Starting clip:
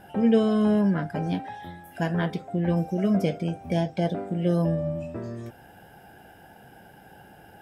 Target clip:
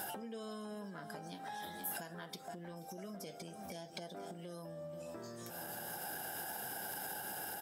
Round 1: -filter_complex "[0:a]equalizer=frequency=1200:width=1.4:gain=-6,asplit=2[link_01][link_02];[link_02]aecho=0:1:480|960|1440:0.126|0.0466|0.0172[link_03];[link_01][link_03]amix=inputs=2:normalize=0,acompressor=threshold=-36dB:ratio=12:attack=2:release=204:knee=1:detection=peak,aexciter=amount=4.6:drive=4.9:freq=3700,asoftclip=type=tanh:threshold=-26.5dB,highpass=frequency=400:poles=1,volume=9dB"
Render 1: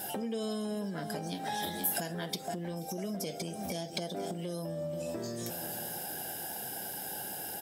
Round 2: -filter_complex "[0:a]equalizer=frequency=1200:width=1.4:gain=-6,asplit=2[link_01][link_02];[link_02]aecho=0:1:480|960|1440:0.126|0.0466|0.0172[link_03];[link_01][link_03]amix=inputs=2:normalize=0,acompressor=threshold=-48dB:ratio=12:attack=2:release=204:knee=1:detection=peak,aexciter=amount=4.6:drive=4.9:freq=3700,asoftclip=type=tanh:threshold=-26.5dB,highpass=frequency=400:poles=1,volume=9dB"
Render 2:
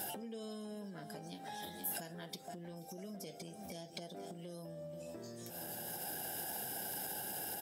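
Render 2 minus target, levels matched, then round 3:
1,000 Hz band −3.5 dB
-filter_complex "[0:a]equalizer=frequency=1200:width=1.4:gain=5,asplit=2[link_01][link_02];[link_02]aecho=0:1:480|960|1440:0.126|0.0466|0.0172[link_03];[link_01][link_03]amix=inputs=2:normalize=0,acompressor=threshold=-48dB:ratio=12:attack=2:release=204:knee=1:detection=peak,aexciter=amount=4.6:drive=4.9:freq=3700,asoftclip=type=tanh:threshold=-26.5dB,highpass=frequency=400:poles=1,volume=9dB"

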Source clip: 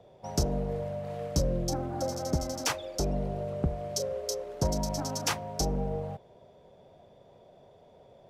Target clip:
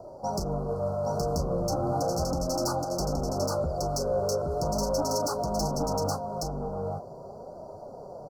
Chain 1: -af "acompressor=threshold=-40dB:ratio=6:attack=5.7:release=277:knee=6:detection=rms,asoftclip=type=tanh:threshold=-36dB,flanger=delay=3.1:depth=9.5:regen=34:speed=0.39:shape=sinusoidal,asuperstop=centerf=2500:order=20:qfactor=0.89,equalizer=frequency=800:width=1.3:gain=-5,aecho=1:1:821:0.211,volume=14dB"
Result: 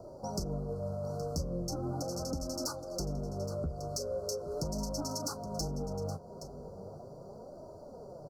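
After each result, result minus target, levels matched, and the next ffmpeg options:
echo-to-direct −11 dB; downward compressor: peak gain reduction +6.5 dB; 1,000 Hz band −5.0 dB
-af "acompressor=threshold=-40dB:ratio=6:attack=5.7:release=277:knee=6:detection=rms,asoftclip=type=tanh:threshold=-36dB,flanger=delay=3.1:depth=9.5:regen=34:speed=0.39:shape=sinusoidal,asuperstop=centerf=2500:order=20:qfactor=0.89,equalizer=frequency=800:width=1.3:gain=-5,aecho=1:1:821:0.75,volume=14dB"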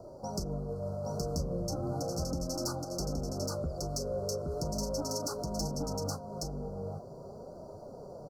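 downward compressor: peak gain reduction +6.5 dB; 1,000 Hz band −5.0 dB
-af "acompressor=threshold=-32dB:ratio=6:attack=5.7:release=277:knee=6:detection=rms,asoftclip=type=tanh:threshold=-36dB,flanger=delay=3.1:depth=9.5:regen=34:speed=0.39:shape=sinusoidal,asuperstop=centerf=2500:order=20:qfactor=0.89,equalizer=frequency=800:width=1.3:gain=-5,aecho=1:1:821:0.75,volume=14dB"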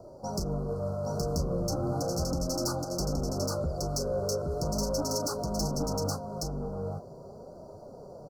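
1,000 Hz band −4.5 dB
-af "acompressor=threshold=-32dB:ratio=6:attack=5.7:release=277:knee=6:detection=rms,asoftclip=type=tanh:threshold=-36dB,flanger=delay=3.1:depth=9.5:regen=34:speed=0.39:shape=sinusoidal,asuperstop=centerf=2500:order=20:qfactor=0.89,equalizer=frequency=800:width=1.3:gain=3,aecho=1:1:821:0.75,volume=14dB"

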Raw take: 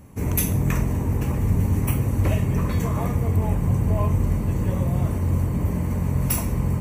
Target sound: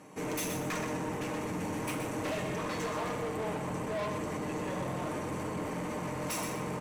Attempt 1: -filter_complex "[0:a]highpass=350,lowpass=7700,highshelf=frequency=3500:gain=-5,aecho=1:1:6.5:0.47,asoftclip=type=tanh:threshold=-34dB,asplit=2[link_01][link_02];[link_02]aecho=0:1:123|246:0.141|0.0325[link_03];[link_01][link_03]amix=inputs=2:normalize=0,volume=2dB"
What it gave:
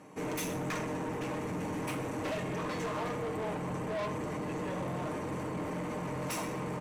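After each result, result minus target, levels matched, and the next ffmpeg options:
echo-to-direct −10 dB; 8,000 Hz band −3.0 dB
-filter_complex "[0:a]highpass=350,lowpass=7700,highshelf=frequency=3500:gain=-5,aecho=1:1:6.5:0.47,asoftclip=type=tanh:threshold=-34dB,asplit=2[link_01][link_02];[link_02]aecho=0:1:123|246|369:0.447|0.103|0.0236[link_03];[link_01][link_03]amix=inputs=2:normalize=0,volume=2dB"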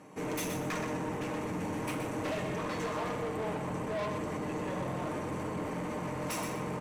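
8,000 Hz band −3.0 dB
-filter_complex "[0:a]highpass=350,lowpass=7700,aecho=1:1:6.5:0.47,asoftclip=type=tanh:threshold=-34dB,asplit=2[link_01][link_02];[link_02]aecho=0:1:123|246|369:0.447|0.103|0.0236[link_03];[link_01][link_03]amix=inputs=2:normalize=0,volume=2dB"

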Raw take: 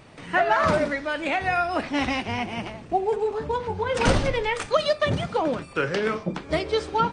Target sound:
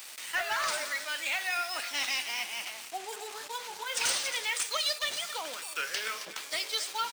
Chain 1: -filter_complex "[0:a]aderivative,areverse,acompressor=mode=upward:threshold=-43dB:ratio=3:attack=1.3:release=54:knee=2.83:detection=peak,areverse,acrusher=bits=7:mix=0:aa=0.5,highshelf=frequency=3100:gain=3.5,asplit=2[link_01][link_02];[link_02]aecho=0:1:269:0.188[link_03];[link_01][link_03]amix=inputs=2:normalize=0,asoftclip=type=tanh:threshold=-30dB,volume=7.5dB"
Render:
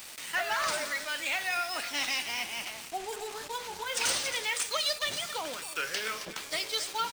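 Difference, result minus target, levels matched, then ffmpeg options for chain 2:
500 Hz band +3.0 dB
-filter_complex "[0:a]aderivative,areverse,acompressor=mode=upward:threshold=-43dB:ratio=3:attack=1.3:release=54:knee=2.83:detection=peak,areverse,acrusher=bits=7:mix=0:aa=0.5,highpass=frequency=620:poles=1,highshelf=frequency=3100:gain=3.5,asplit=2[link_01][link_02];[link_02]aecho=0:1:269:0.188[link_03];[link_01][link_03]amix=inputs=2:normalize=0,asoftclip=type=tanh:threshold=-30dB,volume=7.5dB"

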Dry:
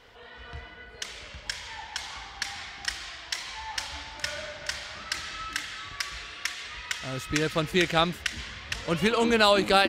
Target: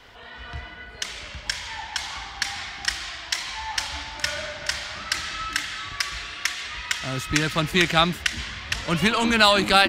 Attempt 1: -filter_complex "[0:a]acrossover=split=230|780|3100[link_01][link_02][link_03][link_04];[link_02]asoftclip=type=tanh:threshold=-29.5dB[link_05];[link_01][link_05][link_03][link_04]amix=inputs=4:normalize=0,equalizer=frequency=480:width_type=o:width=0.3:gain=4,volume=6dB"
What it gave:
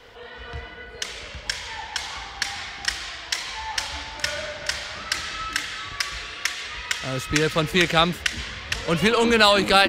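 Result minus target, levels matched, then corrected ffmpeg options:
500 Hz band +3.5 dB
-filter_complex "[0:a]acrossover=split=230|780|3100[link_01][link_02][link_03][link_04];[link_02]asoftclip=type=tanh:threshold=-29.5dB[link_05];[link_01][link_05][link_03][link_04]amix=inputs=4:normalize=0,equalizer=frequency=480:width_type=o:width=0.3:gain=-7.5,volume=6dB"

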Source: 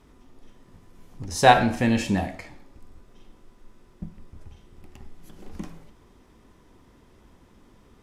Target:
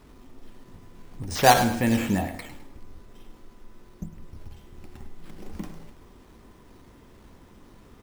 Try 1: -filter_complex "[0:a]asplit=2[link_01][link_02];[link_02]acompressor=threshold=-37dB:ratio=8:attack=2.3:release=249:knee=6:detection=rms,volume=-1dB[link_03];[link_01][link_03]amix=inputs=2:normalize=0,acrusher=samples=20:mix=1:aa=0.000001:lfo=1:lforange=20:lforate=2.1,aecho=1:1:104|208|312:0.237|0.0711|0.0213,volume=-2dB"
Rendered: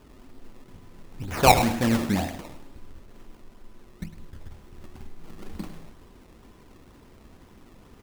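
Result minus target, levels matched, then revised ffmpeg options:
sample-and-hold swept by an LFO: distortion +11 dB
-filter_complex "[0:a]asplit=2[link_01][link_02];[link_02]acompressor=threshold=-37dB:ratio=8:attack=2.3:release=249:knee=6:detection=rms,volume=-1dB[link_03];[link_01][link_03]amix=inputs=2:normalize=0,acrusher=samples=6:mix=1:aa=0.000001:lfo=1:lforange=6:lforate=2.1,aecho=1:1:104|208|312:0.237|0.0711|0.0213,volume=-2dB"

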